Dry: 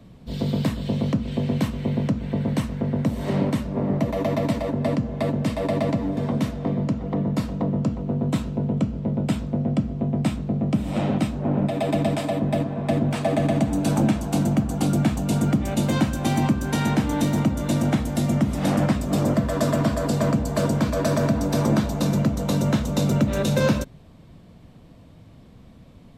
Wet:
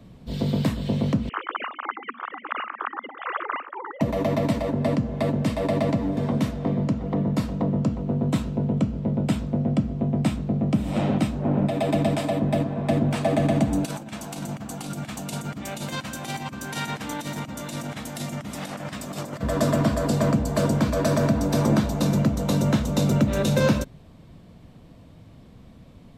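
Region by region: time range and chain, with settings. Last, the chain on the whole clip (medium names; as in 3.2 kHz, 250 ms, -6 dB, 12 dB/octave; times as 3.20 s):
1.29–4.01 s: formants replaced by sine waves + resonant high-pass 1.2 kHz, resonance Q 3.5 + delay 815 ms -22 dB
13.85–19.43 s: high-pass 200 Hz + compressor with a negative ratio -25 dBFS, ratio -0.5 + peaking EQ 340 Hz -9.5 dB 2.6 oct
whole clip: none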